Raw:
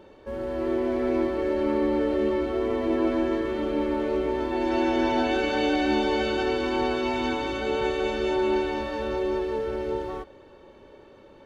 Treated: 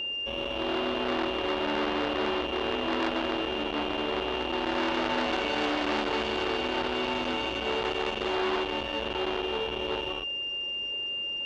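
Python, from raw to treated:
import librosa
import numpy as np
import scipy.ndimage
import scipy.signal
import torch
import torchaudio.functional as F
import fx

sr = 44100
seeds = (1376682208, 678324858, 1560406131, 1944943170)

y = x + 10.0 ** (-30.0 / 20.0) * np.sin(2.0 * np.pi * 2800.0 * np.arange(len(x)) / sr)
y = fx.transformer_sat(y, sr, knee_hz=1900.0)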